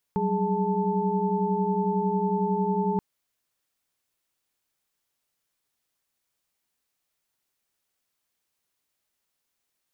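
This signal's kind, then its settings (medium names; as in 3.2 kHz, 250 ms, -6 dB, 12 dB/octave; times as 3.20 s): chord F#3/G3/G#4/A5 sine, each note -28 dBFS 2.83 s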